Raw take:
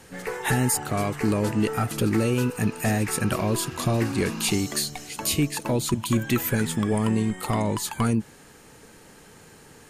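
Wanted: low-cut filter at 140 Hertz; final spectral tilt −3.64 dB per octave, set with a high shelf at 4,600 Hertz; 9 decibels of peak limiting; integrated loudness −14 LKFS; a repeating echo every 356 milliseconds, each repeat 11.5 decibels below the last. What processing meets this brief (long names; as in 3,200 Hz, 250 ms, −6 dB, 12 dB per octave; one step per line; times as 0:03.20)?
high-pass filter 140 Hz
high-shelf EQ 4,600 Hz +9 dB
brickwall limiter −14.5 dBFS
repeating echo 356 ms, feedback 27%, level −11.5 dB
level +11 dB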